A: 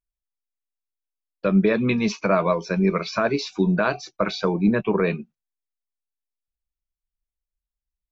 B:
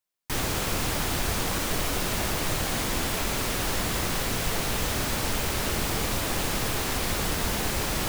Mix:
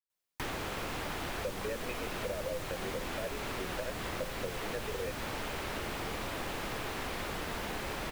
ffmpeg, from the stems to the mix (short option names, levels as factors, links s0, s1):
-filter_complex "[0:a]asplit=3[s0][s1][s2];[s0]bandpass=f=530:t=q:w=8,volume=1[s3];[s1]bandpass=f=1840:t=q:w=8,volume=0.501[s4];[s2]bandpass=f=2480:t=q:w=8,volume=0.355[s5];[s3][s4][s5]amix=inputs=3:normalize=0,volume=1.19[s6];[1:a]adelay=100,volume=0.841[s7];[s6][s7]amix=inputs=2:normalize=0,acrossover=split=270|3500[s8][s9][s10];[s8]acompressor=threshold=0.00708:ratio=4[s11];[s9]acompressor=threshold=0.0141:ratio=4[s12];[s10]acompressor=threshold=0.00251:ratio=4[s13];[s11][s12][s13]amix=inputs=3:normalize=0"